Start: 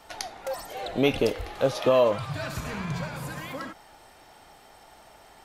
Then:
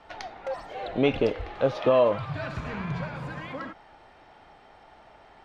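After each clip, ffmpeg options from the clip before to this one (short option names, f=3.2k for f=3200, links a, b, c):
-af "lowpass=2.9k"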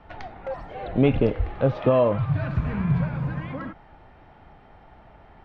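-af "bass=f=250:g=12,treble=f=4k:g=-15"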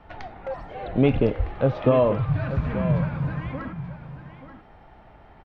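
-af "aecho=1:1:883:0.251"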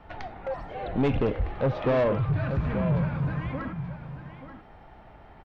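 -af "asoftclip=type=tanh:threshold=-18.5dB"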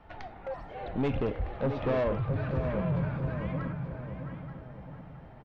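-filter_complex "[0:a]asplit=2[a][b];[b]adelay=669,lowpass=f=1.7k:p=1,volume=-7dB,asplit=2[c][d];[d]adelay=669,lowpass=f=1.7k:p=1,volume=0.49,asplit=2[e][f];[f]adelay=669,lowpass=f=1.7k:p=1,volume=0.49,asplit=2[g][h];[h]adelay=669,lowpass=f=1.7k:p=1,volume=0.49,asplit=2[i][j];[j]adelay=669,lowpass=f=1.7k:p=1,volume=0.49,asplit=2[k][l];[l]adelay=669,lowpass=f=1.7k:p=1,volume=0.49[m];[a][c][e][g][i][k][m]amix=inputs=7:normalize=0,volume=-5dB"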